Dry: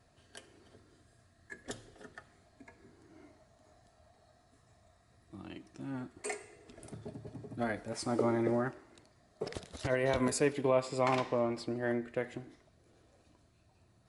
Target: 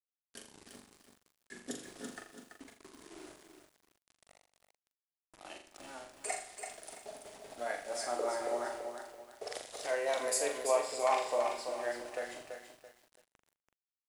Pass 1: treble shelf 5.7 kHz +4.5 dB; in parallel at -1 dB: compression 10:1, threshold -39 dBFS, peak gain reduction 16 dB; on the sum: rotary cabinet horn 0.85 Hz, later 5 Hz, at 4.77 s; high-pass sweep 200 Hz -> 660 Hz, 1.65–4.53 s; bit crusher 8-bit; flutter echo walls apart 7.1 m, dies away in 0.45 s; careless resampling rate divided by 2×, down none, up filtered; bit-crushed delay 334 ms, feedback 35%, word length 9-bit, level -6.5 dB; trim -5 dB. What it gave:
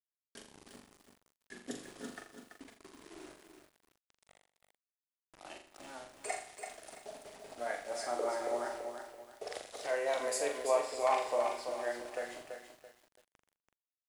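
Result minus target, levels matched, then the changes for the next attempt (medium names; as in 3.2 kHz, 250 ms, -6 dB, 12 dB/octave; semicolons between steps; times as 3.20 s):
8 kHz band -4.0 dB
change: treble shelf 5.7 kHz +12.5 dB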